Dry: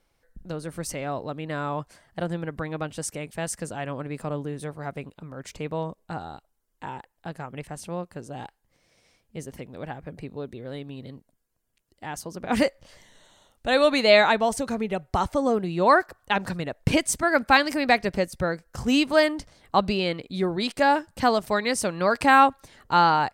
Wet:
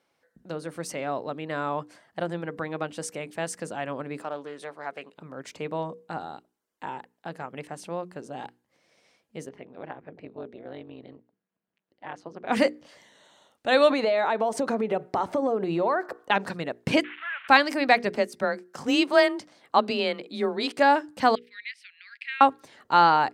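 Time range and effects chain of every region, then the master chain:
0:04.22–0:05.15: meter weighting curve A + highs frequency-modulated by the lows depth 0.18 ms
0:09.49–0:12.47: low-pass filter 3,000 Hz + amplitude modulation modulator 190 Hz, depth 80%
0:13.90–0:16.31: parametric band 560 Hz +10 dB 3 octaves + downward compressor 12 to 1, threshold −21 dBFS
0:17.04–0:17.48: linear delta modulator 16 kbit/s, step −31.5 dBFS + high-pass filter 1,500 Hz 24 dB per octave + upward compression, threshold −38 dBFS
0:18.16–0:20.72: high-pass filter 170 Hz 6 dB per octave + frequency shifter +25 Hz
0:21.35–0:22.41: Butterworth high-pass 2,000 Hz 48 dB per octave + high-frequency loss of the air 430 metres
whole clip: high-pass filter 210 Hz 12 dB per octave; high-shelf EQ 7,300 Hz −9.5 dB; mains-hum notches 60/120/180/240/300/360/420/480 Hz; level +1 dB

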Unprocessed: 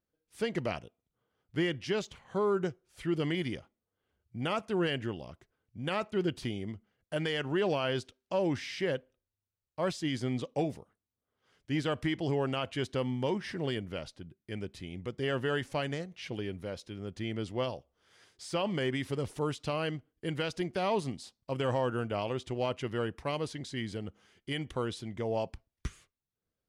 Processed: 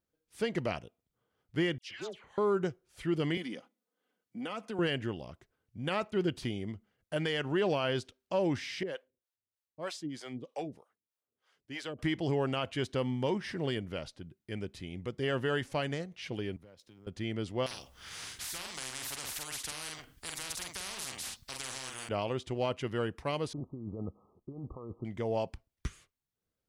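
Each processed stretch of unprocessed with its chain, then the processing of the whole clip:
0:01.78–0:02.38: bass and treble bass −14 dB, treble −5 dB + downward compressor 4 to 1, threshold −37 dBFS + all-pass dispersion lows, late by 127 ms, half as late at 1,500 Hz
0:03.37–0:04.79: high-pass filter 190 Hz 24 dB per octave + comb filter 4 ms, depth 46% + downward compressor 3 to 1, threshold −36 dBFS
0:08.83–0:11.99: high-pass filter 320 Hz 6 dB per octave + two-band tremolo in antiphase 3.2 Hz, depth 100%, crossover 470 Hz
0:16.56–0:17.07: mu-law and A-law mismatch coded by A + downward compressor 10 to 1, threshold −51 dBFS + multiband upward and downward expander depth 40%
0:17.66–0:22.09: parametric band 440 Hz −14 dB 2 octaves + double-tracking delay 46 ms −5.5 dB + every bin compressed towards the loudest bin 10 to 1
0:23.53–0:25.05: compressor whose output falls as the input rises −40 dBFS + linear-phase brick-wall low-pass 1,300 Hz
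whole clip: no processing

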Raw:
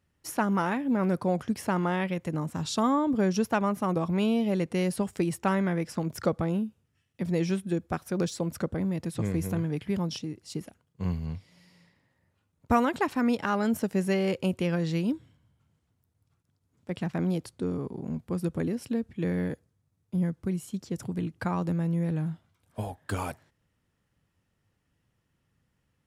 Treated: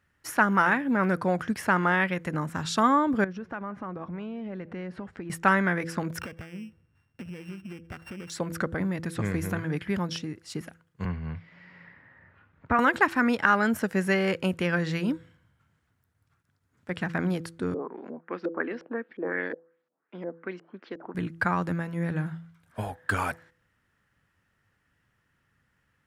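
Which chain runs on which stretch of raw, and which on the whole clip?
0:03.24–0:05.30: downward compressor, threshold −33 dBFS + head-to-tape spacing loss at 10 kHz 31 dB + single-tap delay 176 ms −22 dB
0:06.20–0:08.30: samples sorted by size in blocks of 16 samples + spectral tilt −2 dB per octave + downward compressor 16 to 1, threshold −36 dBFS
0:11.05–0:12.79: Chebyshev low-pass filter 2,300 Hz + multiband upward and downward compressor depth 40%
0:17.74–0:21.15: high-pass filter 290 Hz 24 dB per octave + auto-filter low-pass saw up 2.8 Hz 430–6,800 Hz + high-frequency loss of the air 250 metres
whole clip: parametric band 1,600 Hz +12.5 dB 1.1 octaves; hum removal 166.5 Hz, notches 3

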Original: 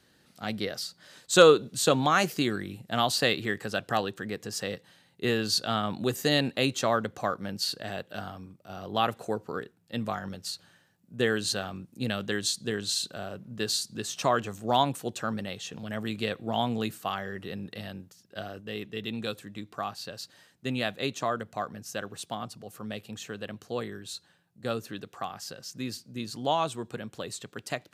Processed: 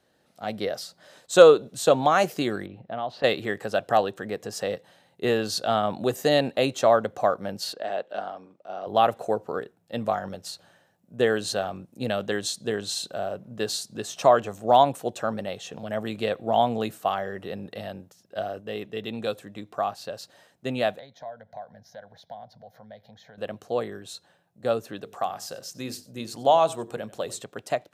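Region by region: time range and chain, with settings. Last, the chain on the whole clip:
0:02.66–0:03.24: high-frequency loss of the air 320 metres + downward compressor 2 to 1, threshold −39 dBFS
0:07.73–0:08.87: high-pass filter 290 Hz + high-frequency loss of the air 96 metres
0:20.99–0:23.38: parametric band 11,000 Hz −14.5 dB 1.2 octaves + downward compressor 2.5 to 1, threshold −47 dBFS + phaser with its sweep stopped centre 1,800 Hz, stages 8
0:25.03–0:27.44: high-shelf EQ 5,300 Hz +6 dB + mains-hum notches 50/100/150/200/250/300/350/400/450 Hz + single-tap delay 93 ms −19 dB
whole clip: automatic gain control gain up to 6 dB; parametric band 640 Hz +11.5 dB 1.2 octaves; notch filter 4,600 Hz, Q 20; level −7 dB

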